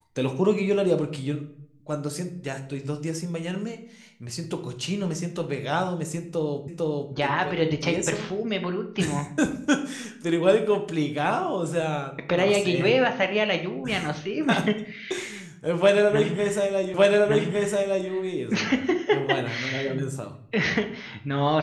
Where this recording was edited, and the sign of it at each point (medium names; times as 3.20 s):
6.68 s: repeat of the last 0.45 s
16.94 s: repeat of the last 1.16 s